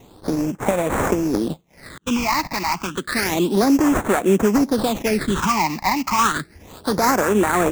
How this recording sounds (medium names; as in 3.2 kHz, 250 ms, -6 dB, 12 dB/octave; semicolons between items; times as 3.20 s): aliases and images of a low sample rate 3 kHz, jitter 20%; phasing stages 8, 0.3 Hz, lowest notch 430–4700 Hz